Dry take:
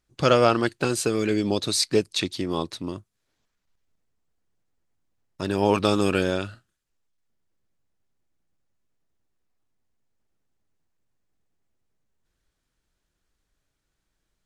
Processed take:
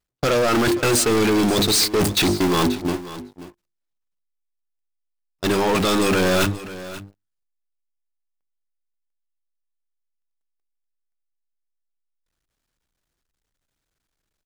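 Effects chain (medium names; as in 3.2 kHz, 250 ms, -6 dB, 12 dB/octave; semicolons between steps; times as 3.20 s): jump at every zero crossing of -30 dBFS; gate -24 dBFS, range -39 dB; hum notches 50/100/150/200/250/300/350/400 Hz; reverse; compression 12:1, threshold -30 dBFS, peak gain reduction 18 dB; reverse; waveshaping leveller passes 5; peak limiter -21.5 dBFS, peak gain reduction 3 dB; on a send: delay 533 ms -15.5 dB; on the sum: trim +6.5 dB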